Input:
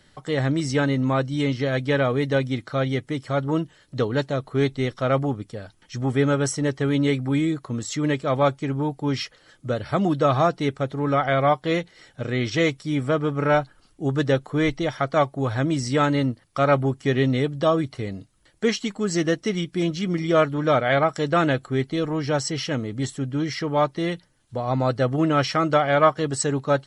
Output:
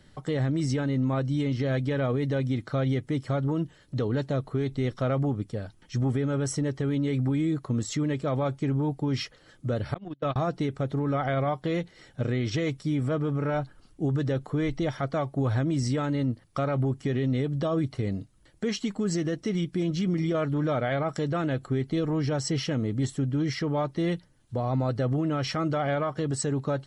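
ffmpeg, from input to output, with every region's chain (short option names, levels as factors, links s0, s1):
-filter_complex "[0:a]asettb=1/sr,asplit=3[s0][s1][s2];[s0]atrim=end=9.944[s3];[s1]atrim=start=9.94:end=10.36,asetpts=PTS-STARTPTS,afade=t=in:d=0.004:c=qsin,afade=t=out:st=0.416:d=0.004:c=qsin,agate=range=0.01:threshold=0.126:ratio=16:release=100:detection=peak,lowpass=4800,equalizer=f=2800:w=0.92:g=7.5[s4];[s2]atrim=start=10.356[s5];[s3][s4]acrossfade=d=0.004:c1=hsin:c2=qsin[s6];[s6][s5]acrossfade=d=0.004:c1=qsin:c2=hsin,lowshelf=f=470:g=8,alimiter=limit=0.168:level=0:latency=1:release=67,volume=0.631"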